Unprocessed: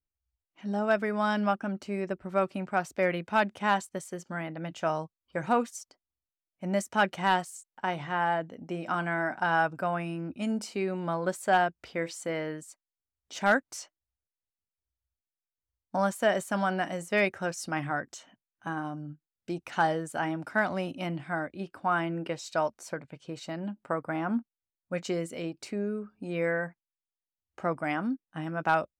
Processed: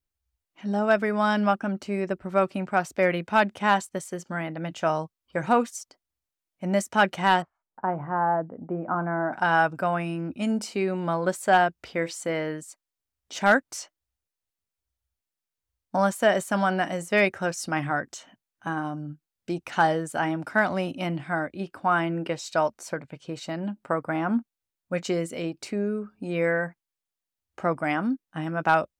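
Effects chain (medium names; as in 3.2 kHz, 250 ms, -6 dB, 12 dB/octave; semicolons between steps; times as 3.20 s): 7.42–9.33 s: low-pass 1.3 kHz 24 dB/octave; trim +4.5 dB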